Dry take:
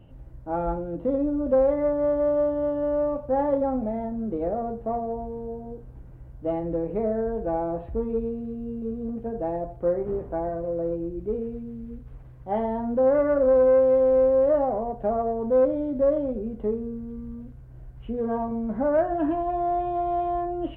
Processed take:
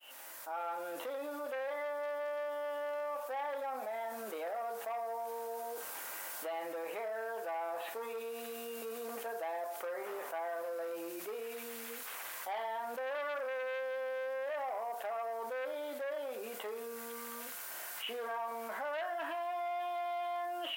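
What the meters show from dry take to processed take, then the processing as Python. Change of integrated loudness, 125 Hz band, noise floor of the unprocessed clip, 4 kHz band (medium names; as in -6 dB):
-14.5 dB, under -35 dB, -44 dBFS, no reading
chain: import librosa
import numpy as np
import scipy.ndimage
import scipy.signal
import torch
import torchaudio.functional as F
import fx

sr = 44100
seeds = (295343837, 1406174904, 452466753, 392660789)

y = fx.fade_in_head(x, sr, length_s=1.13)
y = fx.recorder_agc(y, sr, target_db=-16.0, rise_db_per_s=5.6, max_gain_db=30)
y = np.diff(y, prepend=0.0)
y = fx.fold_sine(y, sr, drive_db=5, ceiling_db=-32.5)
y = scipy.signal.sosfilt(scipy.signal.butter(2, 840.0, 'highpass', fs=sr, output='sos'), y)
y = fx.env_flatten(y, sr, amount_pct=70)
y = y * librosa.db_to_amplitude(2.5)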